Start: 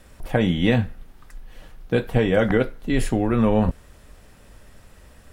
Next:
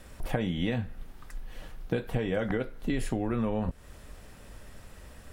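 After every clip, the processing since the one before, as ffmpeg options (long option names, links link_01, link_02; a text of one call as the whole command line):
ffmpeg -i in.wav -af "acompressor=threshold=-26dB:ratio=8" out.wav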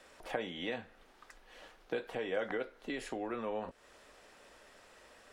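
ffmpeg -i in.wav -filter_complex "[0:a]acrossover=split=320 8000:gain=0.0708 1 0.224[link_01][link_02][link_03];[link_01][link_02][link_03]amix=inputs=3:normalize=0,volume=-3dB" out.wav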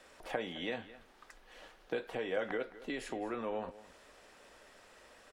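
ffmpeg -i in.wav -af "aecho=1:1:214:0.141" out.wav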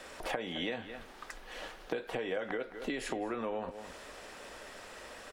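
ffmpeg -i in.wav -af "acompressor=threshold=-44dB:ratio=5,volume=10.5dB" out.wav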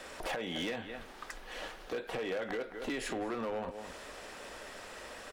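ffmpeg -i in.wav -af "asoftclip=type=hard:threshold=-33dB,volume=1.5dB" out.wav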